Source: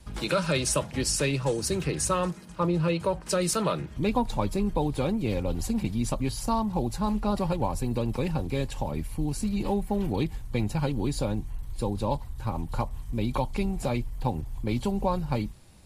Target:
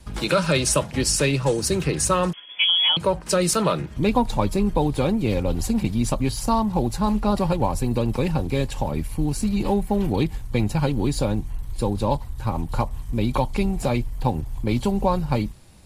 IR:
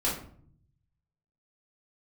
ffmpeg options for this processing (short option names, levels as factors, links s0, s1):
-filter_complex "[0:a]asplit=2[s0][s1];[s1]aeval=exprs='sgn(val(0))*max(abs(val(0))-0.00891,0)':c=same,volume=0.251[s2];[s0][s2]amix=inputs=2:normalize=0,asettb=1/sr,asplit=3[s3][s4][s5];[s3]atrim=end=2.334[s6];[s4]atrim=start=2.33:end=2.97,asetpts=PTS-STARTPTS,afade=t=in:d=0.004:c=qsin,afade=t=out:st=0.636:d=0.004:c=qsin,lowpass=f=3000:t=q:w=0.5098,lowpass=f=3000:t=q:w=0.6013,lowpass=f=3000:t=q:w=0.9,lowpass=f=3000:t=q:w=2.563,afreqshift=-3500[s7];[s5]atrim=start=2.966[s8];[s6][s7]acrossfade=d=0.004:c1=hsin:c2=qsin[s9];[s9][s8]acrossfade=d=0.004:c1=qsin:c2=hsin,volume=1.58"